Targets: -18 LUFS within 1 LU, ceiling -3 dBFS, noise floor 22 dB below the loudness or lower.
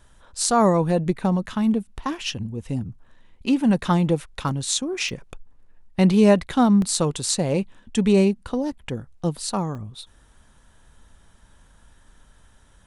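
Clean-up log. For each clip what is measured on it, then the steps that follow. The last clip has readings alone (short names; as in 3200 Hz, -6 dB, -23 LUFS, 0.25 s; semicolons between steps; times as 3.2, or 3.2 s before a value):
dropouts 6; longest dropout 1.4 ms; loudness -22.0 LUFS; peak -3.0 dBFS; loudness target -18.0 LUFS
-> interpolate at 2.28/4.49/5.09/6.82/8.89/9.75, 1.4 ms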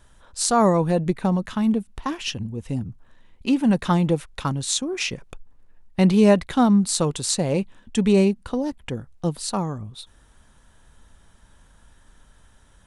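dropouts 0; loudness -22.0 LUFS; peak -3.0 dBFS; loudness target -18.0 LUFS
-> gain +4 dB; limiter -3 dBFS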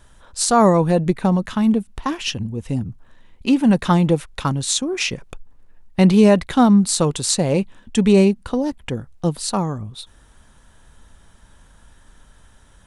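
loudness -18.5 LUFS; peak -3.0 dBFS; noise floor -51 dBFS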